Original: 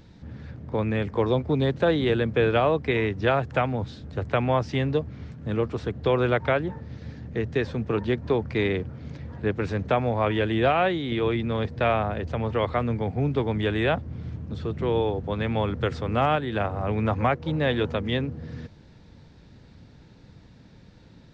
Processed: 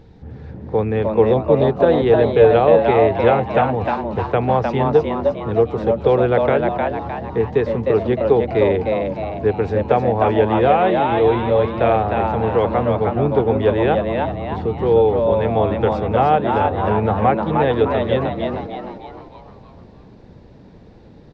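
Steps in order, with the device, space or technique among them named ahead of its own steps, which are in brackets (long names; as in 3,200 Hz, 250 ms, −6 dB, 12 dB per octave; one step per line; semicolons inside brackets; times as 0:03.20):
low-shelf EQ 87 Hz +8.5 dB
inside a helmet (high-shelf EQ 4,400 Hz −8 dB; hollow resonant body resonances 450/770 Hz, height 11 dB, ringing for 30 ms)
echo with shifted repeats 307 ms, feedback 45%, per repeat +110 Hz, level −4 dB
level +1 dB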